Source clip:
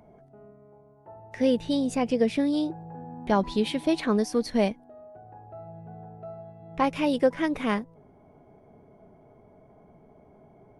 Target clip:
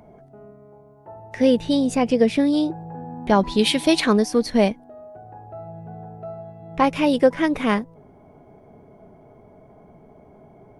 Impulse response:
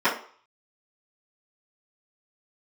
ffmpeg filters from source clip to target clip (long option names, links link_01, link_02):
-filter_complex "[0:a]asettb=1/sr,asplit=3[link_01][link_02][link_03];[link_01]atrim=end=3.594[link_04];[link_02]atrim=start=3.59:end=4.13,asetpts=PTS-STARTPTS,afade=type=in:duration=0.004:curve=qsin,afade=type=out:start_time=0.536:duration=0.004:curve=qsin,highshelf=frequency=2100:gain=10[link_05];[link_03]atrim=start=4.126[link_06];[link_04][link_05]acrossfade=duration=0.004:curve1=hsin:curve2=qsin[link_07];[link_07][link_06]acrossfade=duration=0.004:curve1=qsin:curve2=hsin,volume=6dB"